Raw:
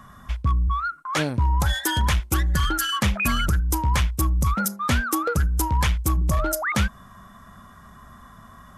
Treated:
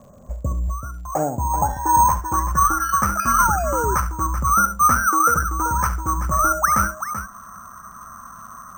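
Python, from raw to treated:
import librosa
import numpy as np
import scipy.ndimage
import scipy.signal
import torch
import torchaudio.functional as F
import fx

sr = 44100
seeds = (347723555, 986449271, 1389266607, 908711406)

y = fx.lowpass(x, sr, hz=1700.0, slope=6)
y = fx.peak_eq(y, sr, hz=460.0, db=-2.5, octaves=1.6)
y = fx.rider(y, sr, range_db=4, speed_s=2.0)
y = fx.low_shelf(y, sr, hz=130.0, db=-6.5)
y = fx.echo_multitap(y, sr, ms=(69, 384), db=(-12.0, -10.0))
y = fx.spec_paint(y, sr, seeds[0], shape='fall', start_s=3.38, length_s=0.57, low_hz=360.0, high_hz=1100.0, level_db=-27.0)
y = fx.filter_sweep_lowpass(y, sr, from_hz=550.0, to_hz=1300.0, start_s=0.29, end_s=3.05, q=7.9)
y = np.repeat(scipy.signal.resample_poly(y, 1, 6), 6)[:len(y)]
y = fx.dmg_crackle(y, sr, seeds[1], per_s=71.0, level_db=-44.0)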